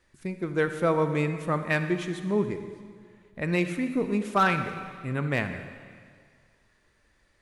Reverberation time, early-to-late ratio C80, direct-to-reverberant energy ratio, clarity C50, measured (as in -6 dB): 1.9 s, 9.5 dB, 8.0 dB, 8.5 dB